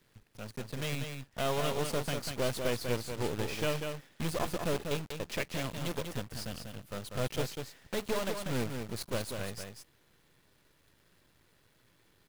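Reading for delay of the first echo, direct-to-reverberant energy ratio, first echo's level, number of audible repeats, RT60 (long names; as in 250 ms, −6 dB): 193 ms, no reverb audible, −6.0 dB, 1, no reverb audible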